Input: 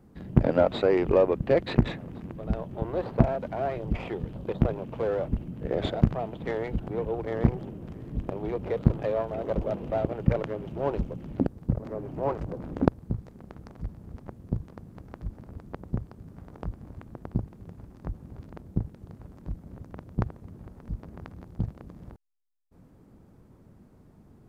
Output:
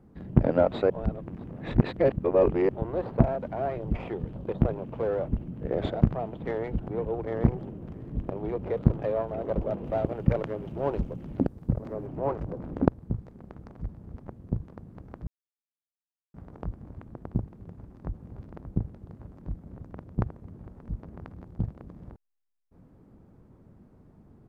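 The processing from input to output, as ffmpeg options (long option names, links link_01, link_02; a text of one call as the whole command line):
ffmpeg -i in.wav -filter_complex "[0:a]asettb=1/sr,asplit=3[link_01][link_02][link_03];[link_01]atrim=end=9.854[link_04];[link_02]atrim=start=9.85:end=12.07,asetpts=PTS-STARTPTS,afade=type=in:duration=0.004:curve=qsin,afade=type=out:start_time=2.216:duration=0.004:curve=qsin,highshelf=frequency=3500:gain=7[link_05];[link_03]atrim=start=12.066[link_06];[link_04][link_05]acrossfade=duration=0.004:curve1=hsin:curve2=qsin[link_07];[link_07][link_06]acrossfade=duration=0.004:curve1=qsin:curve2=hsin,asplit=2[link_08][link_09];[link_09]afade=type=in:start_time=17.65:duration=0.01,afade=type=out:start_time=18.39:duration=0.01,aecho=0:1:580|1160|1740|2320:0.354813|0.141925|0.0567701|0.0227081[link_10];[link_08][link_10]amix=inputs=2:normalize=0,asplit=5[link_11][link_12][link_13][link_14][link_15];[link_11]atrim=end=0.902[link_16];[link_12]atrim=start=0.898:end=2.692,asetpts=PTS-STARTPTS,areverse[link_17];[link_13]atrim=start=2.688:end=15.27,asetpts=PTS-STARTPTS,afade=type=out:start_time=12.578:duration=0.004:curve=hsin[link_18];[link_14]atrim=start=15.27:end=16.34,asetpts=PTS-STARTPTS,volume=0[link_19];[link_15]atrim=start=16.34,asetpts=PTS-STARTPTS,afade=type=in:duration=0.004:curve=hsin[link_20];[link_16][link_17]acrossfade=duration=0.004:curve1=hsin:curve2=hsin[link_21];[link_18][link_19][link_20]concat=n=3:v=0:a=1[link_22];[link_21][link_22]acrossfade=duration=0.004:curve1=hsin:curve2=hsin,highshelf=frequency=2800:gain=-10.5" out.wav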